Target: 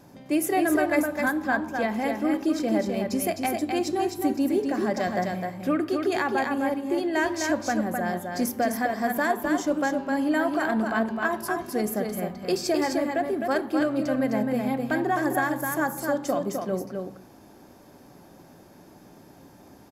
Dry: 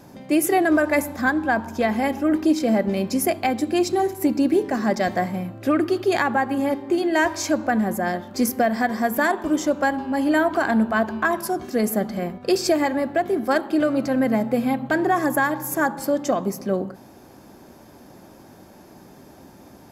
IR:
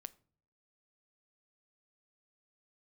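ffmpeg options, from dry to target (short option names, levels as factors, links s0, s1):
-filter_complex "[0:a]aecho=1:1:258:0.596[s0];[1:a]atrim=start_sample=2205[s1];[s0][s1]afir=irnorm=-1:irlink=0"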